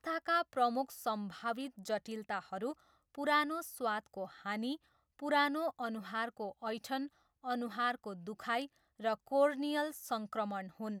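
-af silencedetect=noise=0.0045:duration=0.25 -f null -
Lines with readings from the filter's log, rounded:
silence_start: 2.73
silence_end: 3.15 | silence_duration: 0.42
silence_start: 4.76
silence_end: 5.19 | silence_duration: 0.43
silence_start: 7.07
silence_end: 7.44 | silence_duration: 0.37
silence_start: 8.66
silence_end: 9.00 | silence_duration: 0.34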